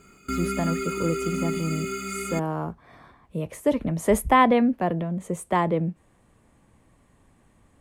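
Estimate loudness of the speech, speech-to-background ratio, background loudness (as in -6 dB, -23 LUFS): -25.5 LUFS, 4.5 dB, -30.0 LUFS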